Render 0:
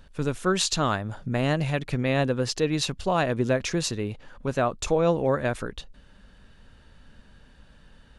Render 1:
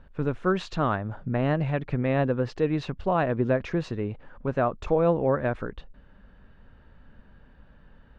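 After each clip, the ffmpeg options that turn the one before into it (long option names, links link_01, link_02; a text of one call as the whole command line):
ffmpeg -i in.wav -af "lowpass=1800" out.wav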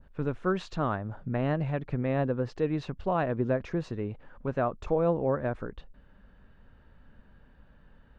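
ffmpeg -i in.wav -af "adynamicequalizer=threshold=0.00562:dfrequency=2800:dqfactor=0.74:tfrequency=2800:tqfactor=0.74:attack=5:release=100:ratio=0.375:range=3:mode=cutabove:tftype=bell,volume=-3.5dB" out.wav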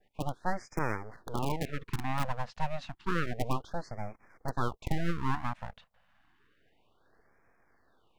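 ffmpeg -i in.wav -filter_complex "[0:a]acrossover=split=180|1600[link_01][link_02][link_03];[link_01]acrusher=bits=4:mix=0:aa=0.000001[link_04];[link_02]aeval=exprs='abs(val(0))':channel_layout=same[link_05];[link_04][link_05][link_03]amix=inputs=3:normalize=0,afftfilt=real='re*(1-between(b*sr/1024,320*pow(3600/320,0.5+0.5*sin(2*PI*0.3*pts/sr))/1.41,320*pow(3600/320,0.5+0.5*sin(2*PI*0.3*pts/sr))*1.41))':imag='im*(1-between(b*sr/1024,320*pow(3600/320,0.5+0.5*sin(2*PI*0.3*pts/sr))/1.41,320*pow(3600/320,0.5+0.5*sin(2*PI*0.3*pts/sr))*1.41))':win_size=1024:overlap=0.75" out.wav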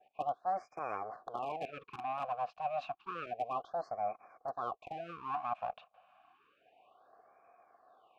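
ffmpeg -i in.wav -filter_complex "[0:a]areverse,acompressor=threshold=-36dB:ratio=6,areverse,asplit=3[link_01][link_02][link_03];[link_01]bandpass=frequency=730:width_type=q:width=8,volume=0dB[link_04];[link_02]bandpass=frequency=1090:width_type=q:width=8,volume=-6dB[link_05];[link_03]bandpass=frequency=2440:width_type=q:width=8,volume=-9dB[link_06];[link_04][link_05][link_06]amix=inputs=3:normalize=0,volume=16dB" out.wav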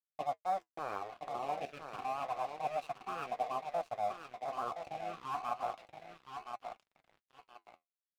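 ffmpeg -i in.wav -filter_complex "[0:a]asplit=2[link_01][link_02];[link_02]aecho=0:1:1020|2040|3060|4080:0.501|0.18|0.065|0.0234[link_03];[link_01][link_03]amix=inputs=2:normalize=0,aeval=exprs='sgn(val(0))*max(abs(val(0))-0.00335,0)':channel_layout=same,flanger=delay=4.3:depth=9.8:regen=-62:speed=0.3:shape=sinusoidal,volume=5dB" out.wav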